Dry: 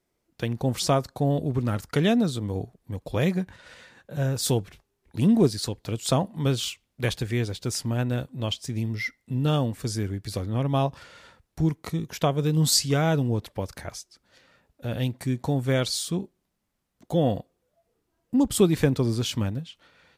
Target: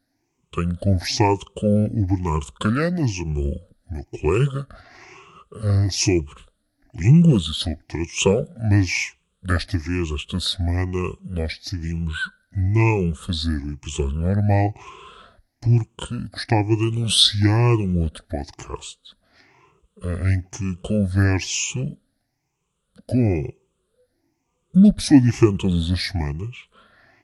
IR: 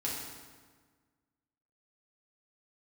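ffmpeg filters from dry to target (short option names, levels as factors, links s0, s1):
-af "afftfilt=real='re*pow(10,17/40*sin(2*PI*(0.72*log(max(b,1)*sr/1024/100)/log(2)-(1.4)*(pts-256)/sr)))':imag='im*pow(10,17/40*sin(2*PI*(0.72*log(max(b,1)*sr/1024/100)/log(2)-(1.4)*(pts-256)/sr)))':win_size=1024:overlap=0.75,asetrate=32667,aresample=44100,volume=1.19"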